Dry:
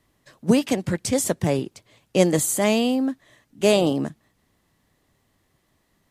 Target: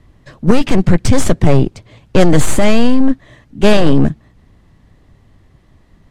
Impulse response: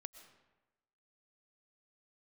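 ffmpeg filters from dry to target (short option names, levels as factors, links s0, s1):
-af "aeval=exprs='0.668*(cos(1*acos(clip(val(0)/0.668,-1,1)))-cos(1*PI/2))+0.0668*(cos(8*acos(clip(val(0)/0.668,-1,1)))-cos(8*PI/2))':c=same,aemphasis=mode=reproduction:type=bsi,apsyclip=4.73,volume=0.794"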